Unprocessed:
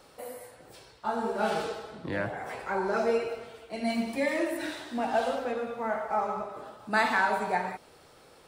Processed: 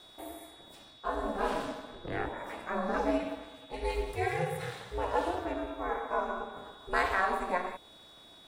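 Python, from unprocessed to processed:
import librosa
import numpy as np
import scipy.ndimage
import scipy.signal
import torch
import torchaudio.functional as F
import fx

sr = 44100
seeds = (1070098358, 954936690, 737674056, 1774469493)

y = x + 10.0 ** (-50.0 / 20.0) * np.sin(2.0 * np.pi * 3600.0 * np.arange(len(x)) / sr)
y = fx.dynamic_eq(y, sr, hz=4600.0, q=0.91, threshold_db=-52.0, ratio=4.0, max_db=-4)
y = y * np.sin(2.0 * np.pi * 180.0 * np.arange(len(y)) / sr)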